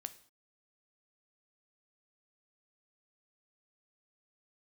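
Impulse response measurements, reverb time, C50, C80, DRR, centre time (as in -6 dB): not exponential, 15.5 dB, 19.0 dB, 11.0 dB, 5 ms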